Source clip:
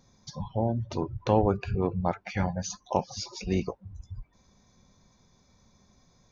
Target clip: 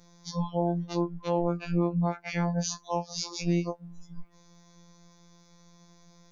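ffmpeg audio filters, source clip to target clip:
-af "afftfilt=real='hypot(re,im)*cos(PI*b)':imag='0':win_size=1024:overlap=0.75,alimiter=level_in=1.06:limit=0.0631:level=0:latency=1:release=286,volume=0.944,afftfilt=real='re*2.83*eq(mod(b,8),0)':imag='im*2.83*eq(mod(b,8),0)':win_size=2048:overlap=0.75,volume=1.33"

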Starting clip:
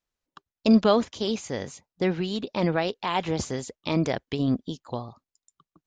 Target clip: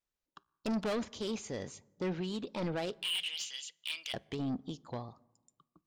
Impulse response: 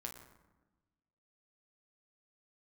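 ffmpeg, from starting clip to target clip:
-filter_complex "[0:a]asettb=1/sr,asplit=3[s0][s1][s2];[s0]atrim=end=3.024[s3];[s1]atrim=start=3.02:end=4.14,asetpts=PTS-STARTPTS,afade=t=in:d=0.004:c=qsin,afade=t=out:st=1.116:d=0.004:c=qsin,highpass=f=2900:t=q:w=10[s4];[s2]atrim=start=4.136[s5];[s3][s4]acrossfade=d=0.004:c1=hsin:c2=qsin[s6];[s6][s5]acrossfade=d=0.004:c1=qsin:c2=hsin,asoftclip=type=tanh:threshold=0.0631,asplit=2[s7][s8];[1:a]atrim=start_sample=2205[s9];[s8][s9]afir=irnorm=-1:irlink=0,volume=0.2[s10];[s7][s10]amix=inputs=2:normalize=0,volume=0.447"

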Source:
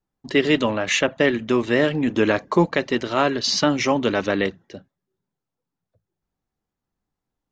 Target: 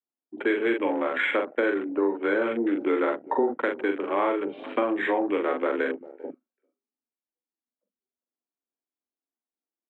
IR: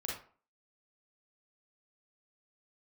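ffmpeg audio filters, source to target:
-filter_complex "[0:a]asplit=2[s0][s1];[s1]adelay=32,volume=0.596[s2];[s0][s2]amix=inputs=2:normalize=0,highpass=f=160:t=q:w=0.5412,highpass=f=160:t=q:w=1.307,lowpass=f=3100:t=q:w=0.5176,lowpass=f=3100:t=q:w=0.7071,lowpass=f=3100:t=q:w=1.932,afreqshift=150,asplit=2[s3][s4];[s4]adelay=300,highpass=300,lowpass=3400,asoftclip=type=hard:threshold=0.211,volume=0.0891[s5];[s3][s5]amix=inputs=2:normalize=0,asetrate=33516,aresample=44100,afwtdn=0.0282,acompressor=threshold=0.0631:ratio=2.5"

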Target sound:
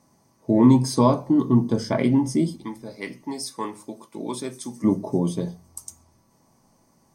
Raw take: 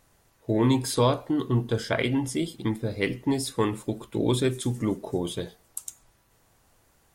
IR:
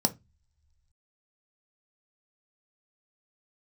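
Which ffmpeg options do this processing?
-filter_complex "[0:a]asplit=3[s0][s1][s2];[s0]afade=t=out:st=2.56:d=0.02[s3];[s1]highpass=f=1300:p=1,afade=t=in:st=2.56:d=0.02,afade=t=out:st=4.83:d=0.02[s4];[s2]afade=t=in:st=4.83:d=0.02[s5];[s3][s4][s5]amix=inputs=3:normalize=0[s6];[1:a]atrim=start_sample=2205,asetrate=48510,aresample=44100[s7];[s6][s7]afir=irnorm=-1:irlink=0,volume=0.398"

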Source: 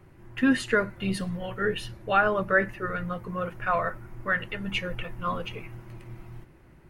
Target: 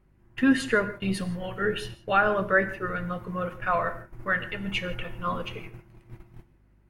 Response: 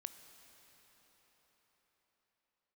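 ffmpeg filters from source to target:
-filter_complex "[0:a]agate=range=0.224:threshold=0.0112:ratio=16:detection=peak,aeval=exprs='val(0)+0.000794*(sin(2*PI*50*n/s)+sin(2*PI*2*50*n/s)/2+sin(2*PI*3*50*n/s)/3+sin(2*PI*4*50*n/s)/4+sin(2*PI*5*50*n/s)/5)':c=same[s0];[1:a]atrim=start_sample=2205,afade=t=out:st=0.22:d=0.01,atrim=end_sample=10143[s1];[s0][s1]afir=irnorm=-1:irlink=0,volume=1.78"

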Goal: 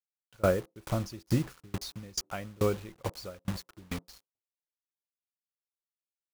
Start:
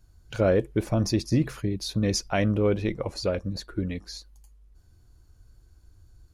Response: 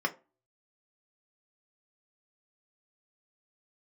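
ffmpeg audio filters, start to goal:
-filter_complex "[0:a]adynamicequalizer=threshold=0.00251:dfrequency=1300:dqfactor=4.8:tfrequency=1300:tqfactor=4.8:attack=5:release=100:ratio=0.375:range=3.5:mode=boostabove:tftype=bell,acrusher=bits=5:mix=0:aa=0.000001,asplit=2[s0][s1];[1:a]atrim=start_sample=2205,lowpass=f=1100:w=0.5412,lowpass=f=1100:w=1.3066[s2];[s1][s2]afir=irnorm=-1:irlink=0,volume=0.112[s3];[s0][s3]amix=inputs=2:normalize=0,aeval=exprs='val(0)*pow(10,-30*if(lt(mod(2.3*n/s,1),2*abs(2.3)/1000),1-mod(2.3*n/s,1)/(2*abs(2.3)/1000),(mod(2.3*n/s,1)-2*abs(2.3)/1000)/(1-2*abs(2.3)/1000))/20)':c=same"

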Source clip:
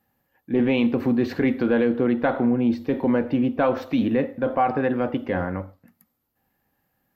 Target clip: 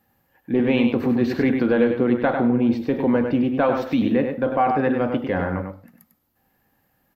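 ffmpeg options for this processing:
-filter_complex "[0:a]asplit=2[s0][s1];[s1]adelay=99.13,volume=0.501,highshelf=f=4000:g=-2.23[s2];[s0][s2]amix=inputs=2:normalize=0,asplit=2[s3][s4];[s4]acompressor=threshold=0.0224:ratio=6,volume=0.75[s5];[s3][s5]amix=inputs=2:normalize=0"

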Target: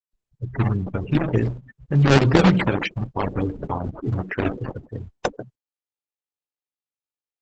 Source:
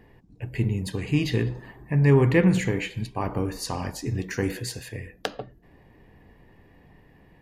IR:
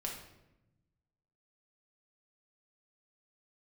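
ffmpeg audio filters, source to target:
-af "acrusher=samples=26:mix=1:aa=0.000001:lfo=1:lforange=41.6:lforate=3.4,afftfilt=real='re*gte(hypot(re,im),0.0355)':imag='im*gte(hypot(re,im),0.0355)':win_size=1024:overlap=0.75,volume=1.58" -ar 48000 -c:a libopus -b:a 10k

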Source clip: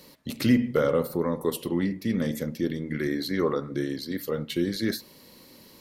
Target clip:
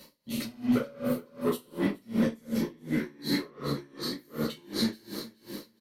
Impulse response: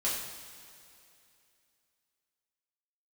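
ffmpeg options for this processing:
-filter_complex "[0:a]asettb=1/sr,asplit=3[s0][s1][s2];[s0]atrim=end=0.974[s3];[s1]atrim=start=0.97:end=1.44,asetpts=PTS-STARTPTS,afade=t=in:d=0.004:c=qsin,afade=t=out:st=0.466:d=0.004:c=qsin,acompressor=threshold=0.0224:ratio=6[s4];[s2]atrim=start=1.436[s5];[s3][s4]acrossfade=d=0.004:c1=hsin:c2=qsin[s6];[s6][s5]acrossfade=d=0.004:c1=qsin:c2=hsin,asoftclip=type=tanh:threshold=0.0668,aecho=1:1:421|842|1263|1684|2105|2526:0.299|0.164|0.0903|0.0497|0.0273|0.015[s7];[1:a]atrim=start_sample=2205,afade=t=out:st=0.28:d=0.01,atrim=end_sample=12789[s8];[s7][s8]afir=irnorm=-1:irlink=0,aeval=exprs='val(0)*pow(10,-31*(0.5-0.5*cos(2*PI*2.7*n/s))/20)':c=same"

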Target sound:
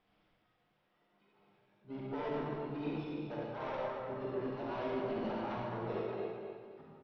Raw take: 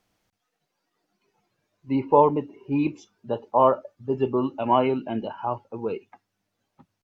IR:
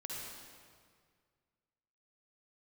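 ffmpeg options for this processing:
-filter_complex "[0:a]bandreject=f=60:t=h:w=6,bandreject=f=120:t=h:w=6,bandreject=f=180:t=h:w=6,bandreject=f=240:t=h:w=6,bandreject=f=300:t=h:w=6,areverse,acompressor=threshold=0.0282:ratio=16,areverse,aecho=1:1:248|496|744|992:0.376|0.128|0.0434|0.0148,aresample=8000,asoftclip=type=tanh:threshold=0.0178,aresample=44100[s0];[1:a]atrim=start_sample=2205,asetrate=57330,aresample=44100[s1];[s0][s1]afir=irnorm=-1:irlink=0,asplit=2[s2][s3];[s3]asetrate=66075,aresample=44100,atempo=0.66742,volume=0.398[s4];[s2][s4]amix=inputs=2:normalize=0,volume=1.5"

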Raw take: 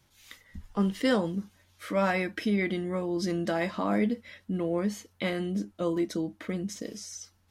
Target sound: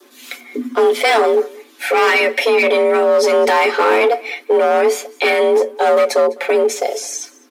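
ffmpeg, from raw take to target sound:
-filter_complex "[0:a]equalizer=f=5500:w=0.92:g=-4.5,aecho=1:1:6.2:0.6,adynamicequalizer=threshold=0.00355:dfrequency=2100:dqfactor=4:tfrequency=2100:tqfactor=4:attack=5:release=100:ratio=0.375:range=3:mode=boostabove:tftype=bell,acrossover=split=1700[s0][s1];[s0]asoftclip=type=hard:threshold=0.0473[s2];[s2][s1]amix=inputs=2:normalize=0,apsyclip=25.1,asplit=2[s3][s4];[s4]aecho=0:1:205:0.0708[s5];[s3][s5]amix=inputs=2:normalize=0,afreqshift=230,volume=0.335"

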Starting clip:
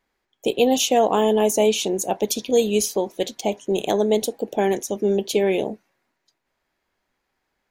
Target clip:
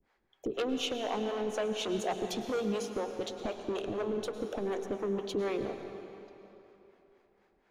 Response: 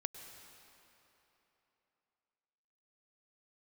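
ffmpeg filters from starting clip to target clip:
-filter_complex "[0:a]aemphasis=mode=reproduction:type=75fm,acrossover=split=180|3700[s0][s1][s2];[s2]alimiter=level_in=1.88:limit=0.0631:level=0:latency=1:release=440,volume=0.531[s3];[s0][s1][s3]amix=inputs=3:normalize=0,acompressor=threshold=0.0447:ratio=6,asoftclip=type=tanh:threshold=0.0355,acrossover=split=430[s4][s5];[s4]aeval=exprs='val(0)*(1-1/2+1/2*cos(2*PI*4.1*n/s))':c=same[s6];[s5]aeval=exprs='val(0)*(1-1/2-1/2*cos(2*PI*4.1*n/s))':c=same[s7];[s6][s7]amix=inputs=2:normalize=0[s8];[1:a]atrim=start_sample=2205[s9];[s8][s9]afir=irnorm=-1:irlink=0,volume=2.51"

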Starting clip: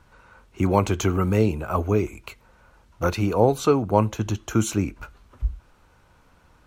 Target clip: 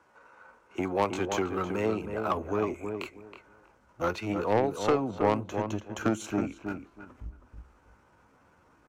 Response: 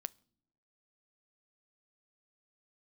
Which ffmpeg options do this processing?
-filter_complex "[0:a]highpass=65,acrossover=split=760|4900[s0][s1][s2];[s1]adynamicsmooth=sensitivity=7.5:basefreq=2600[s3];[s0][s3][s2]amix=inputs=3:normalize=0,asubboost=boost=3.5:cutoff=250,acompressor=threshold=0.0708:ratio=2,aeval=exprs='0.299*(cos(1*acos(clip(val(0)/0.299,-1,1)))-cos(1*PI/2))+0.0668*(cos(3*acos(clip(val(0)/0.299,-1,1)))-cos(3*PI/2))+0.0119*(cos(5*acos(clip(val(0)/0.299,-1,1)))-cos(5*PI/2))+0.00335*(cos(6*acos(clip(val(0)/0.299,-1,1)))-cos(6*PI/2))':c=same,acrossover=split=280 6700:gain=0.1 1 0.251[s4][s5][s6];[s4][s5][s6]amix=inputs=3:normalize=0,asoftclip=type=tanh:threshold=0.0891,atempo=0.75,asplit=2[s7][s8];[s8]adelay=321,lowpass=f=1500:p=1,volume=0.501,asplit=2[s9][s10];[s10]adelay=321,lowpass=f=1500:p=1,volume=0.2,asplit=2[s11][s12];[s12]adelay=321,lowpass=f=1500:p=1,volume=0.2[s13];[s9][s11][s13]amix=inputs=3:normalize=0[s14];[s7][s14]amix=inputs=2:normalize=0,volume=1.88"

